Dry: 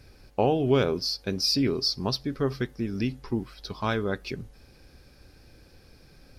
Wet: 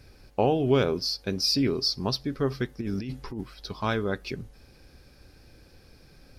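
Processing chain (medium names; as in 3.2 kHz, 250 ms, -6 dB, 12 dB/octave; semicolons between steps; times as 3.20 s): 2.81–3.41 s: compressor with a negative ratio -32 dBFS, ratio -1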